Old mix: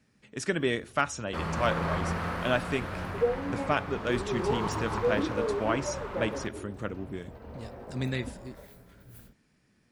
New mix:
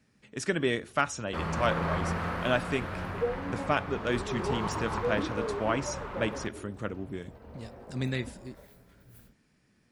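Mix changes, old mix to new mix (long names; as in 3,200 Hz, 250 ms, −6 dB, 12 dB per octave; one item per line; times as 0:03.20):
first sound: add bass and treble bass 0 dB, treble −4 dB
second sound −4.0 dB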